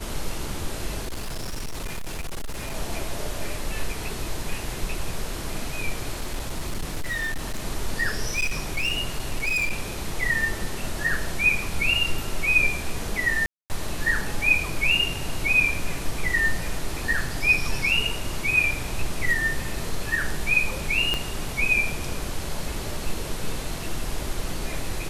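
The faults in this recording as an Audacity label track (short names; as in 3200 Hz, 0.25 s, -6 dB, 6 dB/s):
1.020000	2.760000	clipped -26.5 dBFS
6.160000	7.670000	clipped -23.5 dBFS
8.350000	9.720000	clipped -20.5 dBFS
13.460000	13.700000	gap 0.239 s
21.140000	21.140000	pop -10 dBFS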